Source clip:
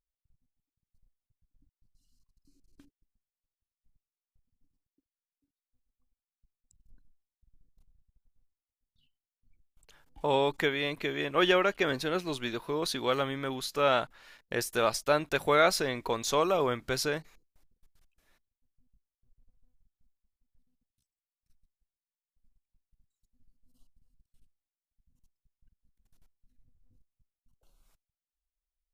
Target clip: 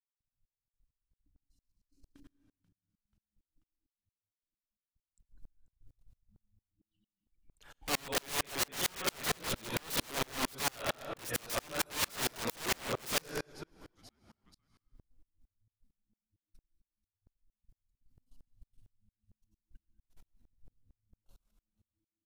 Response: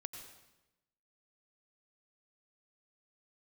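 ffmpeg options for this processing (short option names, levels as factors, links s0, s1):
-filter_complex "[0:a]atempo=1.3,agate=range=0.0224:threshold=0.00126:ratio=3:detection=peak,asplit=2[s0][s1];[1:a]atrim=start_sample=2205[s2];[s1][s2]afir=irnorm=-1:irlink=0,volume=2.11[s3];[s0][s3]amix=inputs=2:normalize=0,adynamicequalizer=threshold=0.0112:dfrequency=330:dqfactor=4.8:tfrequency=330:tqfactor=4.8:attack=5:release=100:ratio=0.375:range=3:mode=cutabove:tftype=bell,acompressor=threshold=0.0501:ratio=5,asplit=4[s4][s5][s6][s7];[s5]adelay=486,afreqshift=-110,volume=0.0794[s8];[s6]adelay=972,afreqshift=-220,volume=0.0359[s9];[s7]adelay=1458,afreqshift=-330,volume=0.016[s10];[s4][s8][s9][s10]amix=inputs=4:normalize=0,aeval=exprs='(mod(25.1*val(0)+1,2)-1)/25.1':c=same,aeval=exprs='val(0)*pow(10,-35*if(lt(mod(-4.4*n/s,1),2*abs(-4.4)/1000),1-mod(-4.4*n/s,1)/(2*abs(-4.4)/1000),(mod(-4.4*n/s,1)-2*abs(-4.4)/1000)/(1-2*abs(-4.4)/1000))/20)':c=same,volume=2.11"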